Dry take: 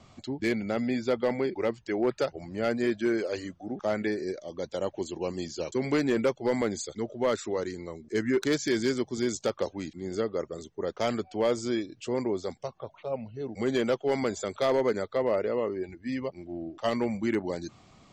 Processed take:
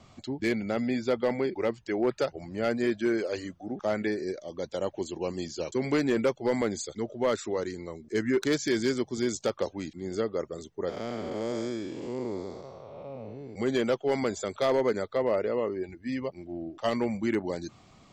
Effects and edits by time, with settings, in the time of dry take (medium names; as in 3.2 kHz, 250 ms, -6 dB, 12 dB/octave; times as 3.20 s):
10.89–13.56 s: spectral blur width 325 ms